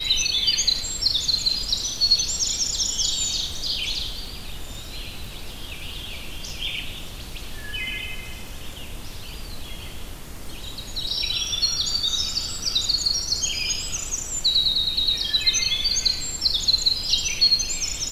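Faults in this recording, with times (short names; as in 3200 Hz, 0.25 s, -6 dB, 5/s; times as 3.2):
crackle 16/s -33 dBFS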